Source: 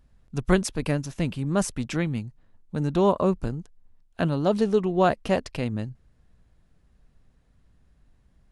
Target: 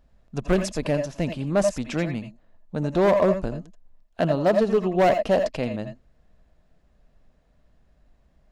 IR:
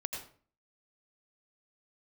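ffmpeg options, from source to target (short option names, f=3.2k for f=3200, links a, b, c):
-filter_complex "[0:a]equalizer=f=100:t=o:w=0.67:g=-7,equalizer=f=630:t=o:w=0.67:g=7,equalizer=f=10k:t=o:w=0.67:g=-8,volume=14.5dB,asoftclip=hard,volume=-14.5dB[a];[1:a]atrim=start_sample=2205,atrim=end_sample=3969[b];[a][b]afir=irnorm=-1:irlink=0,volume=1.5dB"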